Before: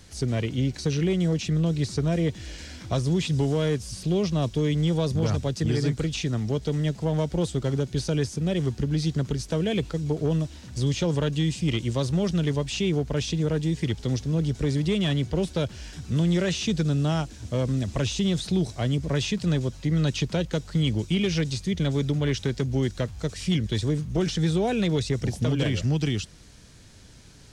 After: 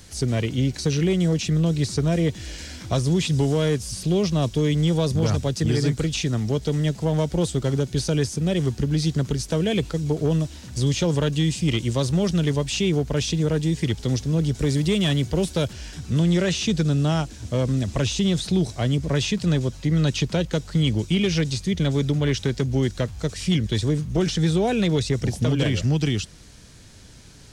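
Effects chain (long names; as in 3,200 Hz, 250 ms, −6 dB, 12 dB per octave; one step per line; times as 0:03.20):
high-shelf EQ 7,500 Hz +7 dB, from 0:14.59 +12 dB, from 0:15.73 +2.5 dB
level +3 dB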